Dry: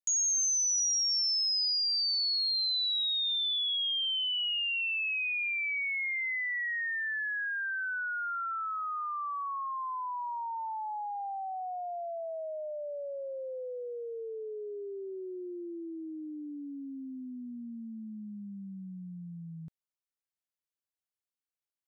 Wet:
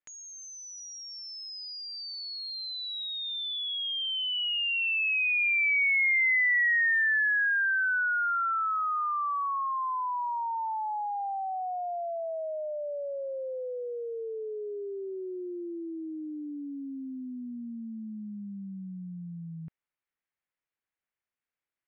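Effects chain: resonant low-pass 2.1 kHz, resonance Q 1.9; trim +3 dB

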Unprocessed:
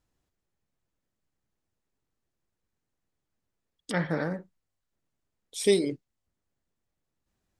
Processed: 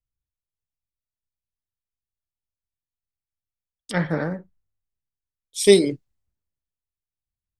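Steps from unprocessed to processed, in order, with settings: three bands expanded up and down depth 70%; trim +3.5 dB

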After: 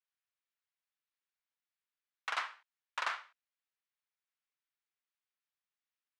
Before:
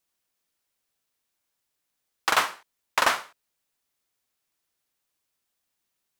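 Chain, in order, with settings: tracing distortion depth 0.41 ms; high-pass 1.5 kHz 12 dB/octave; tape spacing loss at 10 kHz 31 dB; trim -3 dB

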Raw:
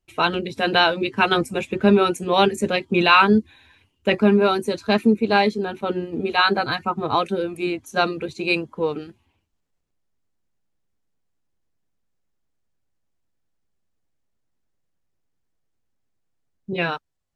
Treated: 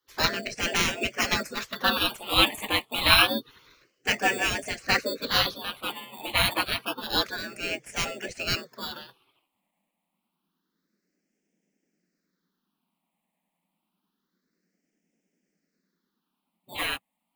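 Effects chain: frequency shift +130 Hz; in parallel at -12 dB: sample-and-hold 11×; on the sum: phase shifter stages 6, 0.28 Hz, lowest notch 390–1100 Hz; spectral gate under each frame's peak -15 dB weak; trim +8 dB

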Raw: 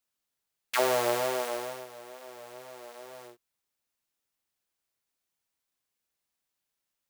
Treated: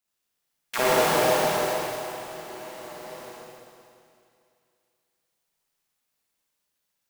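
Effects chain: cycle switcher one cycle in 3, muted; Schroeder reverb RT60 2.5 s, DRR -7 dB

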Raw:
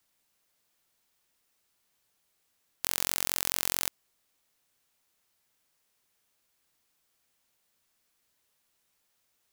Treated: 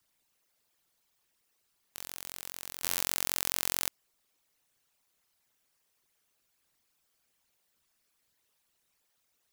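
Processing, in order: resonances exaggerated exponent 2; on a send: reverse echo 887 ms -11 dB; on the sum: trim -1.5 dB

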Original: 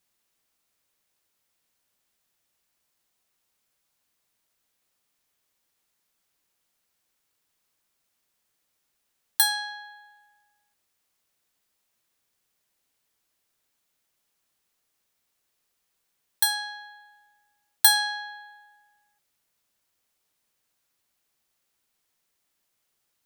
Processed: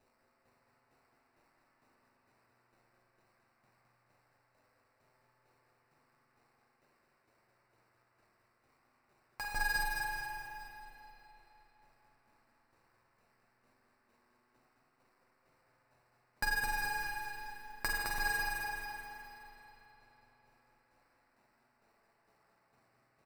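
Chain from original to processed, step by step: frequency weighting D; compression 4:1, threshold -29 dBFS, peak gain reduction 18.5 dB; LFO low-pass saw down 2.2 Hz 890–3000 Hz; sample-rate reducer 3.3 kHz, jitter 0%; flange 0.2 Hz, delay 7.8 ms, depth 1.2 ms, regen -40%; feedback delay 213 ms, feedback 52%, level -4 dB; spring tank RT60 3.9 s, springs 41/49 ms, chirp 70 ms, DRR -1 dB

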